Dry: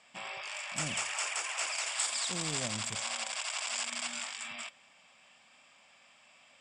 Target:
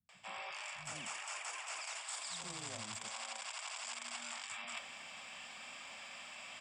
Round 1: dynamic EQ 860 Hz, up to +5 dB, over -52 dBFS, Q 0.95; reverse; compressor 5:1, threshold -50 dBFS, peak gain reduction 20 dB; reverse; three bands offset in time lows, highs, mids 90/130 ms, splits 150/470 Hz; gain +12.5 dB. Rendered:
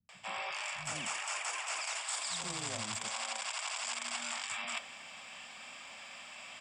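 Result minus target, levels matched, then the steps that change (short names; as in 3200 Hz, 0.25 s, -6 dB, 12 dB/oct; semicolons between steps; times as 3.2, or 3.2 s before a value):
compressor: peak gain reduction -6.5 dB
change: compressor 5:1, threshold -58 dBFS, peak gain reduction 26.5 dB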